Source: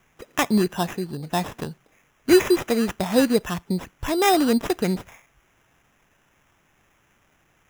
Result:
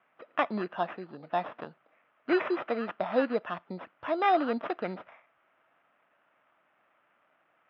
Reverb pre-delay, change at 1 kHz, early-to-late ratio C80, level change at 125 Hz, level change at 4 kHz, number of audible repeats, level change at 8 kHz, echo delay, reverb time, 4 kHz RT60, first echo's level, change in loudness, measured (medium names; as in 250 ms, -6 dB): no reverb, -3.5 dB, no reverb, -17.0 dB, -15.5 dB, no echo, under -40 dB, no echo, no reverb, no reverb, no echo, -8.5 dB